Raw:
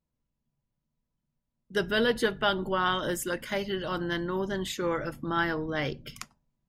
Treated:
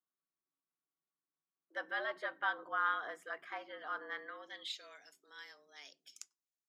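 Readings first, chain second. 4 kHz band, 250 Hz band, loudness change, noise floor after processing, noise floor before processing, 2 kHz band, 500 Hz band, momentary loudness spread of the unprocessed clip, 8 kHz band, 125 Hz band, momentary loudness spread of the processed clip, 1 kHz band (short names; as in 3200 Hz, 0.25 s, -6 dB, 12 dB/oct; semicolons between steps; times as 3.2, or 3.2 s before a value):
-14.5 dB, -27.5 dB, -10.5 dB, under -85 dBFS, -84 dBFS, -7.5 dB, -18.5 dB, 7 LU, -16.0 dB, under -40 dB, 20 LU, -8.0 dB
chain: frequency shift +140 Hz; band-pass sweep 1300 Hz -> 6800 Hz, 4.09–5.08; gain -4 dB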